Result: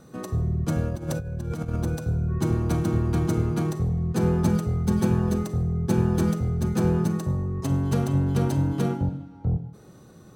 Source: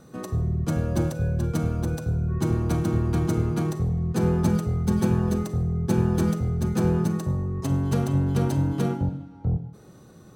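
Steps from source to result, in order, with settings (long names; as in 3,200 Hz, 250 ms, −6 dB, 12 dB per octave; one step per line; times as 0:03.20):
0:00.89–0:01.76: compressor whose output falls as the input rises −28 dBFS, ratio −0.5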